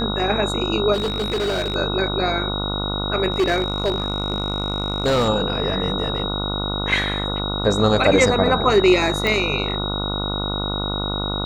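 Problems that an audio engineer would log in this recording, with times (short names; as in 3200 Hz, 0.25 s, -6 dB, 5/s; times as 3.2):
buzz 50 Hz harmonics 29 -26 dBFS
tone 3800 Hz -26 dBFS
0.93–1.76 clipped -18.5 dBFS
3.32–5.29 clipped -14 dBFS
9.27 pop -8 dBFS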